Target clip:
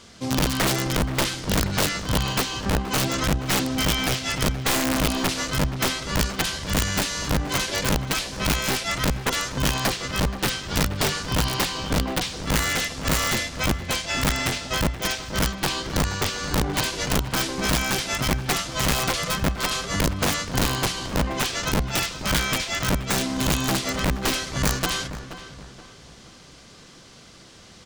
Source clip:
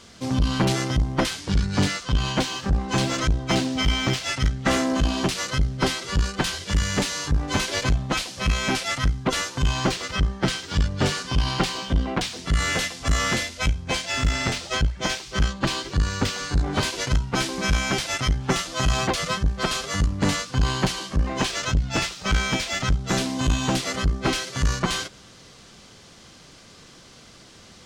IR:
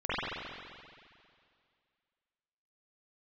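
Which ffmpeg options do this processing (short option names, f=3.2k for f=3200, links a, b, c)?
-filter_complex "[0:a]aeval=exprs='(mod(5.96*val(0)+1,2)-1)/5.96':c=same,asplit=2[a][b];[b]adelay=476,lowpass=f=2.2k:p=1,volume=-11.5dB,asplit=2[c][d];[d]adelay=476,lowpass=f=2.2k:p=1,volume=0.39,asplit=2[e][f];[f]adelay=476,lowpass=f=2.2k:p=1,volume=0.39,asplit=2[g][h];[h]adelay=476,lowpass=f=2.2k:p=1,volume=0.39[i];[a][c][e][g][i]amix=inputs=5:normalize=0"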